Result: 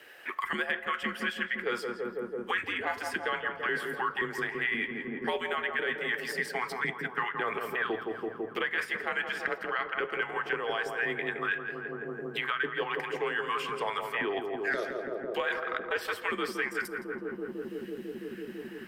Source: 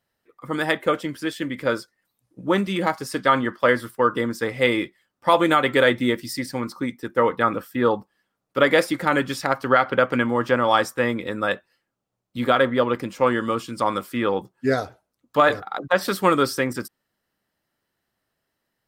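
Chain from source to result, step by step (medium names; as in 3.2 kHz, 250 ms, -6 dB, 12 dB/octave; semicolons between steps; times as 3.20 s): LFO high-pass saw up 1.9 Hz 410–1700 Hz; high-order bell 2.3 kHz +12 dB 1.2 oct; reverse; compression 6:1, threshold -24 dBFS, peak gain reduction 20 dB; reverse; frequency shift -94 Hz; gate -57 dBFS, range -6 dB; filtered feedback delay 166 ms, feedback 79%, low-pass 990 Hz, level -4.5 dB; on a send at -17.5 dB: reverberation RT60 0.65 s, pre-delay 6 ms; on the sum: three bands compressed up and down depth 100%; trim -6 dB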